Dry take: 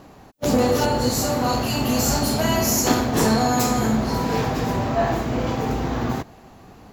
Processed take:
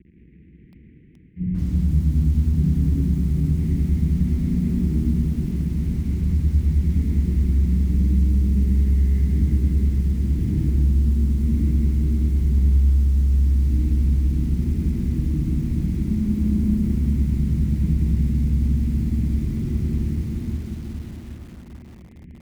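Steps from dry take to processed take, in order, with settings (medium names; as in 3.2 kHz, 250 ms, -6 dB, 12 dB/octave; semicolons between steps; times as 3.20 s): distance through air 330 m; bit crusher 7-bit; inverse Chebyshev band-stop 1.9–4.2 kHz, stop band 50 dB; cabinet simulation 110–6700 Hz, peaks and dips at 220 Hz +8 dB, 560 Hz +8 dB, 1.6 kHz +7 dB, 2.9 kHz +5 dB, 6.5 kHz +4 dB; feedback echo behind a low-pass 136 ms, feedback 68%, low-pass 600 Hz, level -18 dB; Schroeder reverb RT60 1.6 s, combs from 32 ms, DRR -5.5 dB; wide varispeed 0.309×; compression 4:1, threshold -10 dBFS, peak gain reduction 9 dB; bit-crushed delay 180 ms, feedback 55%, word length 6-bit, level -7.5 dB; trim -6.5 dB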